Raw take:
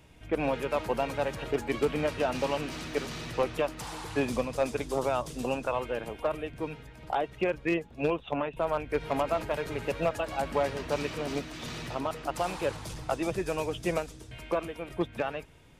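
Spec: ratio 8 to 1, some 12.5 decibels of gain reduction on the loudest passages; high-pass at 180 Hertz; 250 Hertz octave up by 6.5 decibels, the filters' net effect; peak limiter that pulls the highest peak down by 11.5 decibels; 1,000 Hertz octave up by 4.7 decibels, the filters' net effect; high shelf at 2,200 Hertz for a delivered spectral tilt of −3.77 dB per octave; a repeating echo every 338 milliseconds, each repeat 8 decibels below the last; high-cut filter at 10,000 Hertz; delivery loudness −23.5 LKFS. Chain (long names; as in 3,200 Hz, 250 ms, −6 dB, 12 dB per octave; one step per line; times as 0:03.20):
high-pass filter 180 Hz
low-pass filter 10,000 Hz
parametric band 250 Hz +9 dB
parametric band 1,000 Hz +4 dB
high-shelf EQ 2,200 Hz +8 dB
downward compressor 8 to 1, threshold −32 dBFS
brickwall limiter −27.5 dBFS
repeating echo 338 ms, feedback 40%, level −8 dB
level +14.5 dB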